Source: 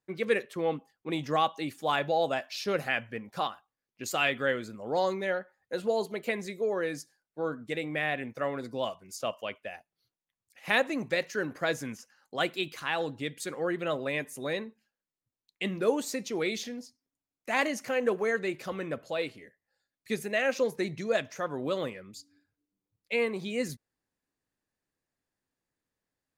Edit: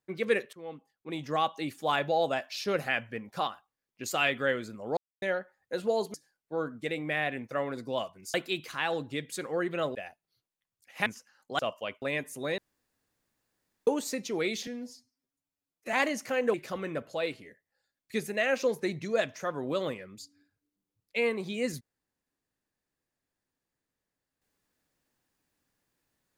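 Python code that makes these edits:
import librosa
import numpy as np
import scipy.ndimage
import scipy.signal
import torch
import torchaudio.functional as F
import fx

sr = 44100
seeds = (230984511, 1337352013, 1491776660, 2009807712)

y = fx.edit(x, sr, fx.fade_in_from(start_s=0.53, length_s=1.13, floor_db=-18.0),
    fx.silence(start_s=4.97, length_s=0.25),
    fx.cut(start_s=6.14, length_s=0.86),
    fx.swap(start_s=9.2, length_s=0.43, other_s=12.42, other_length_s=1.61),
    fx.cut(start_s=10.74, length_s=1.15),
    fx.room_tone_fill(start_s=14.59, length_s=1.29),
    fx.stretch_span(start_s=16.68, length_s=0.84, factor=1.5),
    fx.cut(start_s=18.13, length_s=0.37), tone=tone)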